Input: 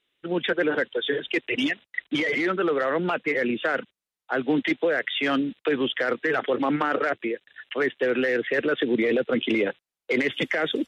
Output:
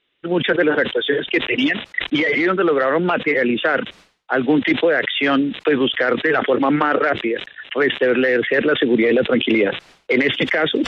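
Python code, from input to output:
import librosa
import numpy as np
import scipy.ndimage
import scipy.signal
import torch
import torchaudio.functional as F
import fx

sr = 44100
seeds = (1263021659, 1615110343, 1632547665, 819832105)

y = scipy.signal.sosfilt(scipy.signal.butter(2, 4000.0, 'lowpass', fs=sr, output='sos'), x)
y = fx.sustainer(y, sr, db_per_s=130.0)
y = F.gain(torch.from_numpy(y), 7.0).numpy()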